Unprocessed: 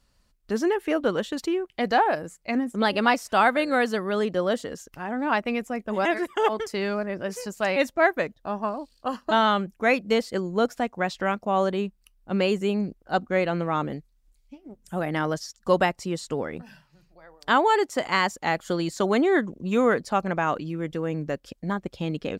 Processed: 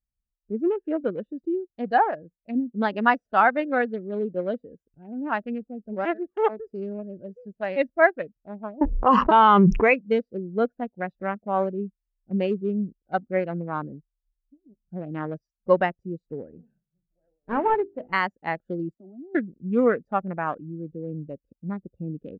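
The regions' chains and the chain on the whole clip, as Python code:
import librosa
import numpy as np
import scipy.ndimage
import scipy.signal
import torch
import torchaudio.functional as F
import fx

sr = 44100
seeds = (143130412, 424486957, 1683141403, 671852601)

y = fx.chain(x, sr, fx.env_lowpass(base_hz=930.0, full_db=-20.5),
    fx.ripple_eq(per_octave=0.76, db=8),
    fx.env_flatten(amount_pct=100), at=(8.81, 9.94))
y = fx.chain(y, sr, fx.cvsd(bps=16000),
    fx.hum_notches(base_hz=50, count=10), at=(16.45, 18.13))
y = fx.chain(y, sr, fx.level_steps(step_db=16),
    fx.fixed_phaser(hz=470.0, stages=6), at=(18.94, 19.35))
y = fx.wiener(y, sr, points=41)
y = fx.dynamic_eq(y, sr, hz=1700.0, q=0.89, threshold_db=-35.0, ratio=4.0, max_db=4)
y = fx.spectral_expand(y, sr, expansion=1.5)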